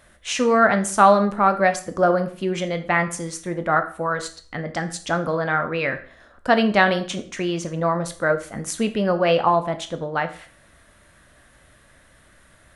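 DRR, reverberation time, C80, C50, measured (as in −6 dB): 8.0 dB, 0.45 s, 17.5 dB, 13.5 dB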